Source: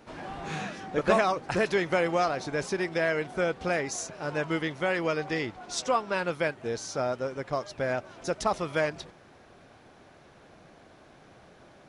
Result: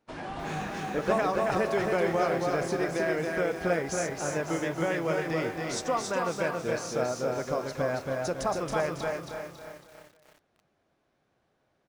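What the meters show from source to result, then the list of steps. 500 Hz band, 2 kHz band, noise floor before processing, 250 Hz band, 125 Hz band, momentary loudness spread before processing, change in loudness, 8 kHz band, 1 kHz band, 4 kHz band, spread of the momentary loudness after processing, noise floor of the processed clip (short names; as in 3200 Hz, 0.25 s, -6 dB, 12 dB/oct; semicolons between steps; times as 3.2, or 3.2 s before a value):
+0.5 dB, -2.0 dB, -55 dBFS, +1.0 dB, +1.5 dB, 9 LU, -0.5 dB, +0.5 dB, -0.5 dB, -2.5 dB, 8 LU, -74 dBFS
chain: gate -46 dBFS, range -23 dB; dynamic EQ 3400 Hz, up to -6 dB, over -44 dBFS, Q 0.77; in parallel at +1 dB: compressor 6:1, threshold -35 dBFS, peak gain reduction 16 dB; on the sum: flange 0.82 Hz, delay 7 ms, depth 2.2 ms, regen -90%; on a send: feedback echo 0.275 s, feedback 39%, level -3.5 dB; on the sum: lo-fi delay 0.305 s, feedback 55%, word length 8-bit, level -9 dB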